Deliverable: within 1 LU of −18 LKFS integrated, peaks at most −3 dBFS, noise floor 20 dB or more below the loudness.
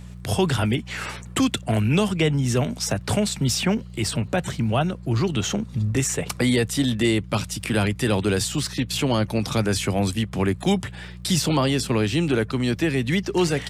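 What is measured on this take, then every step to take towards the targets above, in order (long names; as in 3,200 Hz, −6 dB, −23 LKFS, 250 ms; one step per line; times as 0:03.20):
crackle rate 25 per second; mains hum 60 Hz; hum harmonics up to 180 Hz; level of the hum −38 dBFS; integrated loudness −23.0 LKFS; sample peak −9.0 dBFS; target loudness −18.0 LKFS
→ click removal
hum removal 60 Hz, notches 3
level +5 dB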